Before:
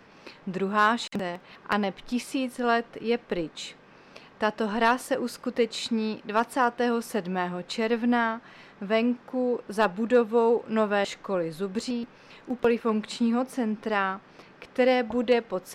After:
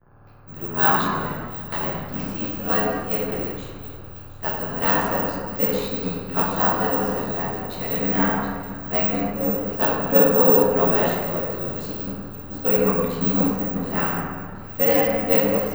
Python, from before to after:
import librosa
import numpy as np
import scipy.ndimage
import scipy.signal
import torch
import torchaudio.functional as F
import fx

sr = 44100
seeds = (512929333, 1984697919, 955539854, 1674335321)

y = scipy.signal.sosfilt(scipy.signal.butter(6, 8500.0, 'lowpass', fs=sr, output='sos'), x)
y = (np.kron(scipy.signal.resample_poly(y, 1, 2), np.eye(2)[0]) * 2)[:len(y)]
y = fx.dmg_buzz(y, sr, base_hz=60.0, harmonics=29, level_db=-38.0, tilt_db=-3, odd_only=False)
y = y * np.sin(2.0 * np.pi * 41.0 * np.arange(len(y)) / sr)
y = fx.echo_wet_highpass(y, sr, ms=724, feedback_pct=61, hz=3300.0, wet_db=-8.0)
y = fx.room_shoebox(y, sr, seeds[0], volume_m3=130.0, walls='hard', distance_m=0.8)
y = fx.band_widen(y, sr, depth_pct=100)
y = y * librosa.db_to_amplitude(-2.0)